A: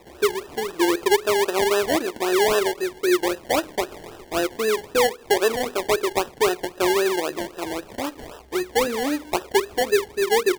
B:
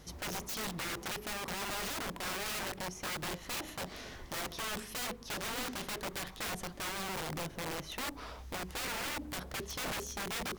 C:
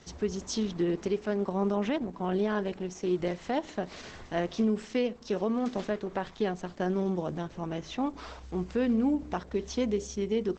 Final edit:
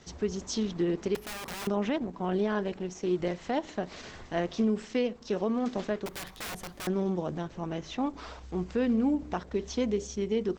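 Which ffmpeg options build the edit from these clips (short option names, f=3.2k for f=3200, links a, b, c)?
-filter_complex "[1:a]asplit=2[a][b];[2:a]asplit=3[c][d][e];[c]atrim=end=1.152[f];[a]atrim=start=1.148:end=1.672[g];[d]atrim=start=1.668:end=6.062[h];[b]atrim=start=6.058:end=6.872[i];[e]atrim=start=6.868[j];[f][g]acrossfade=d=0.004:c1=hsin:c2=hsin[k];[k][h]acrossfade=d=0.004:c1=hsin:c2=hsin[l];[l][i]acrossfade=d=0.004:c1=hsin:c2=hsin[m];[m][j]acrossfade=d=0.004:c1=hsin:c2=hsin"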